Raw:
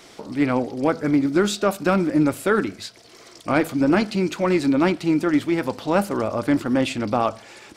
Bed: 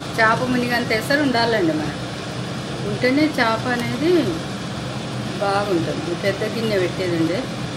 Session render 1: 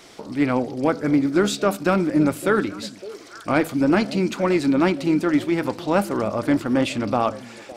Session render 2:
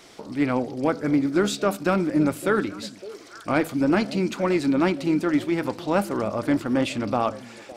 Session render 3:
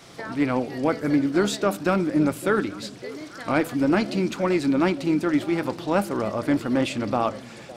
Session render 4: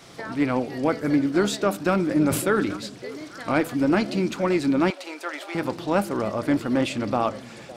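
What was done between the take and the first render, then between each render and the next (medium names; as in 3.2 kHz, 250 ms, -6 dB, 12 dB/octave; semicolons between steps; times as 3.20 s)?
repeats whose band climbs or falls 280 ms, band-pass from 180 Hz, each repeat 1.4 oct, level -11 dB
trim -2.5 dB
add bed -21.5 dB
1.93–2.77 s: decay stretcher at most 62 dB/s; 4.90–5.55 s: high-pass 540 Hz 24 dB/octave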